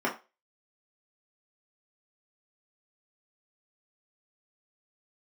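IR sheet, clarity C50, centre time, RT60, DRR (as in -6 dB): 11.0 dB, 19 ms, 0.30 s, -4.5 dB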